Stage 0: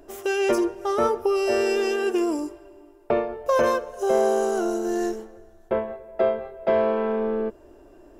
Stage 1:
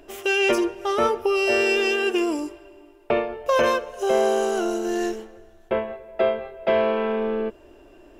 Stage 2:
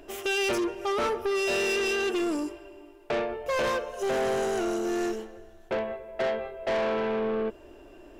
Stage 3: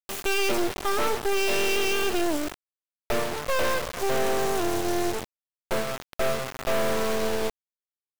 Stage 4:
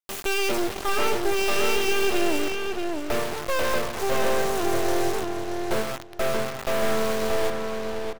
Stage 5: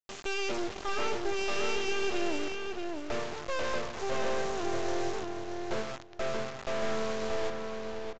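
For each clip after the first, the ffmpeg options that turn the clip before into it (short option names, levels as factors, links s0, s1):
-af "equalizer=f=2800:t=o:w=1.1:g=10.5"
-af "asoftclip=type=tanh:threshold=0.0631"
-af "acrusher=bits=3:dc=4:mix=0:aa=0.000001,volume=1.88"
-filter_complex "[0:a]asplit=2[s0][s1];[s1]adelay=630,lowpass=f=4000:p=1,volume=0.668,asplit=2[s2][s3];[s3]adelay=630,lowpass=f=4000:p=1,volume=0.19,asplit=2[s4][s5];[s5]adelay=630,lowpass=f=4000:p=1,volume=0.19[s6];[s0][s2][s4][s6]amix=inputs=4:normalize=0"
-af "aresample=16000,aresample=44100,volume=0.398"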